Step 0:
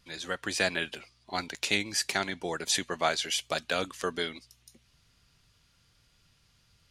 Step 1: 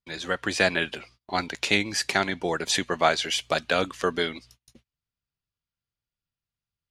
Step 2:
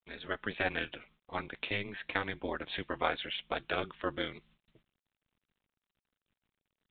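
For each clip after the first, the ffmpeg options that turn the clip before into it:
-af "aemphasis=mode=reproduction:type=cd,agate=range=-32dB:threshold=-59dB:ratio=16:detection=peak,volume=6.5dB"
-af "bandreject=f=700:w=13,aeval=exprs='val(0)*sin(2*PI*100*n/s)':c=same,volume=-6.5dB" -ar 8000 -c:a pcm_mulaw

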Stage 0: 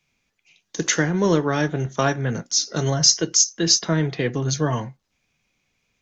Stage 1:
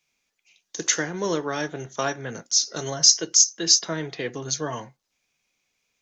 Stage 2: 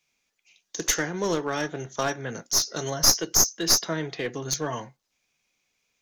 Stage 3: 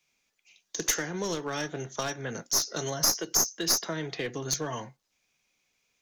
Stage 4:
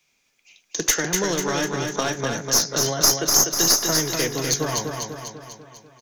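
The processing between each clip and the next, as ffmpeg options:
-af "bass=f=250:g=-10,treble=f=4k:g=6,volume=-4.5dB"
-af "aeval=exprs='clip(val(0),-1,0.075)':c=same"
-filter_complex "[0:a]acrossover=split=160|2600|6000[a][b][c][d];[a]acompressor=threshold=-42dB:ratio=4[e];[b]acompressor=threshold=-31dB:ratio=4[f];[c]acompressor=threshold=-33dB:ratio=4[g];[d]acompressor=threshold=-24dB:ratio=4[h];[e][f][g][h]amix=inputs=4:normalize=0"
-af "aecho=1:1:247|494|741|988|1235|1482|1729:0.596|0.328|0.18|0.0991|0.0545|0.03|0.0165,volume=7dB"

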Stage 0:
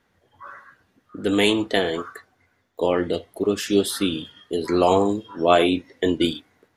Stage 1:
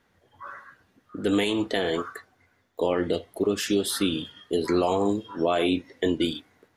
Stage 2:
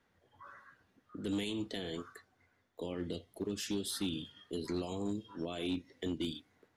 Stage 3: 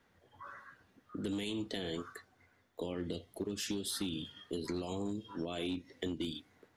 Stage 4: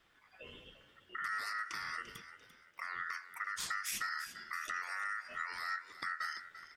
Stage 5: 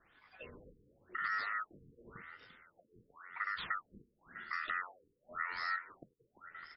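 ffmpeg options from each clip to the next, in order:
-af "alimiter=limit=-13.5dB:level=0:latency=1:release=148"
-filter_complex "[0:a]acrossover=split=300|3000[a][b][c];[b]acompressor=threshold=-48dB:ratio=2[d];[a][d][c]amix=inputs=3:normalize=0,highshelf=f=9.9k:g=-6,asoftclip=type=hard:threshold=-21.5dB,volume=-7.5dB"
-af "acompressor=threshold=-38dB:ratio=6,volume=4dB"
-filter_complex "[0:a]acrossover=split=340|3000[a][b][c];[b]acompressor=threshold=-49dB:ratio=6[d];[a][d][c]amix=inputs=3:normalize=0,aeval=exprs='val(0)*sin(2*PI*1600*n/s)':c=same,asplit=4[e][f][g][h];[f]adelay=343,afreqshift=51,volume=-13.5dB[i];[g]adelay=686,afreqshift=102,volume=-22.9dB[j];[h]adelay=1029,afreqshift=153,volume=-32.2dB[k];[e][i][j][k]amix=inputs=4:normalize=0,volume=3dB"
-af "afftfilt=real='re*lt(b*sr/1024,470*pow(5600/470,0.5+0.5*sin(2*PI*0.93*pts/sr)))':imag='im*lt(b*sr/1024,470*pow(5600/470,0.5+0.5*sin(2*PI*0.93*pts/sr)))':win_size=1024:overlap=0.75,volume=2dB"

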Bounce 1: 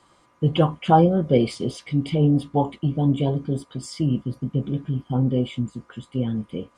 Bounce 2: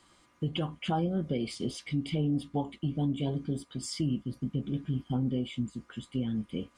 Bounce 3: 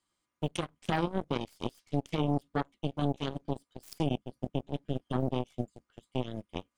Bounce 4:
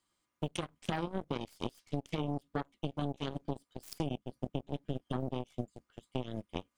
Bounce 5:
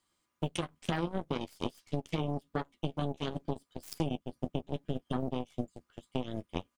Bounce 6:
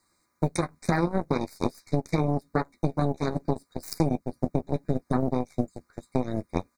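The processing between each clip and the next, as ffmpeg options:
-af "equalizer=f=125:t=o:w=1:g=-6,equalizer=f=500:t=o:w=1:g=-7,equalizer=f=1k:t=o:w=1:g=-7,alimiter=limit=-21.5dB:level=0:latency=1:release=417"
-af "aeval=exprs='0.0891*(cos(1*acos(clip(val(0)/0.0891,-1,1)))-cos(1*PI/2))+0.0316*(cos(3*acos(clip(val(0)/0.0891,-1,1)))-cos(3*PI/2))+0.00224*(cos(4*acos(clip(val(0)/0.0891,-1,1)))-cos(4*PI/2))':c=same,highshelf=f=4.9k:g=7,volume=2.5dB"
-af "acompressor=threshold=-32dB:ratio=4,volume=1dB"
-filter_complex "[0:a]asplit=2[a][b];[b]adelay=12,volume=-11dB[c];[a][c]amix=inputs=2:normalize=0,volume=2dB"
-af "asuperstop=centerf=3000:order=20:qfactor=2.4,volume=8.5dB"

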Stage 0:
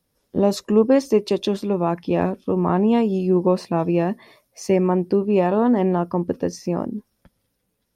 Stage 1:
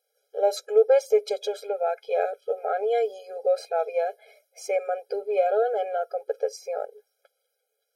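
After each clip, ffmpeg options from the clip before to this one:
-af "afftfilt=real='re*eq(mod(floor(b*sr/1024/420),2),1)':imag='im*eq(mod(floor(b*sr/1024/420),2),1)':win_size=1024:overlap=0.75"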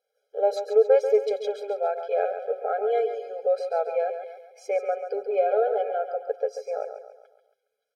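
-filter_complex "[0:a]lowpass=f=2.1k:p=1,asplit=2[a][b];[b]aecho=0:1:138|276|414|552|690:0.355|0.156|0.0687|0.0302|0.0133[c];[a][c]amix=inputs=2:normalize=0"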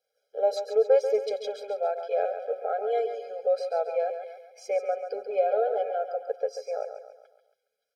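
-filter_complex "[0:a]equalizer=f=400:t=o:w=0.33:g=-7,equalizer=f=1k:t=o:w=0.33:g=-11,equalizer=f=5k:t=o:w=0.33:g=5,acrossover=split=500|1500|2300[a][b][c][d];[c]acompressor=threshold=-59dB:ratio=6[e];[a][b][e][d]amix=inputs=4:normalize=0"

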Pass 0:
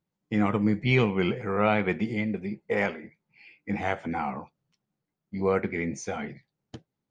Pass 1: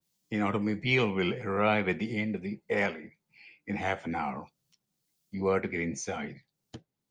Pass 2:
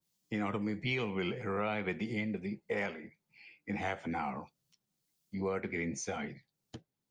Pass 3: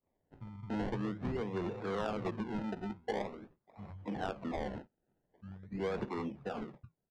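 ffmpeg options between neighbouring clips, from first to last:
-filter_complex "[0:a]acrossover=split=290|490|3500[a][b][c][d];[a]alimiter=level_in=1.5dB:limit=-24dB:level=0:latency=1,volume=-1.5dB[e];[d]acompressor=mode=upward:threshold=-58dB:ratio=2.5[f];[e][b][c][f]amix=inputs=4:normalize=0,adynamicequalizer=threshold=0.00794:dfrequency=2500:dqfactor=0.7:tfrequency=2500:tqfactor=0.7:attack=5:release=100:ratio=0.375:range=2.5:mode=boostabove:tftype=highshelf,volume=-2.5dB"
-af "acompressor=threshold=-28dB:ratio=6,volume=-2.5dB"
-filter_complex "[0:a]acrossover=split=150|3100[a][b][c];[a]adelay=90[d];[b]adelay=380[e];[d][e][c]amix=inputs=3:normalize=0,acrusher=samples=27:mix=1:aa=0.000001:lfo=1:lforange=27:lforate=0.45,adynamicsmooth=sensitivity=1.5:basefreq=1.9k"

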